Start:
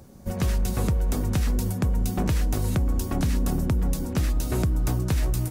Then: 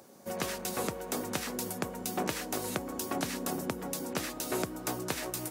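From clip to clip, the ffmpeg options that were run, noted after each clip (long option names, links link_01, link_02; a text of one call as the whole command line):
ffmpeg -i in.wav -af "highpass=370" out.wav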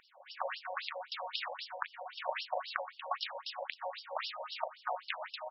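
ffmpeg -i in.wav -af "aecho=1:1:25|37:0.266|0.316,afftfilt=real='re*between(b*sr/1024,670*pow(4000/670,0.5+0.5*sin(2*PI*3.8*pts/sr))/1.41,670*pow(4000/670,0.5+0.5*sin(2*PI*3.8*pts/sr))*1.41)':imag='im*between(b*sr/1024,670*pow(4000/670,0.5+0.5*sin(2*PI*3.8*pts/sr))/1.41,670*pow(4000/670,0.5+0.5*sin(2*PI*3.8*pts/sr))*1.41)':win_size=1024:overlap=0.75,volume=5dB" out.wav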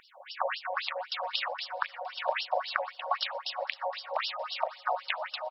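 ffmpeg -i in.wav -af "aecho=1:1:465|930|1395:0.075|0.0345|0.0159,volume=6.5dB" out.wav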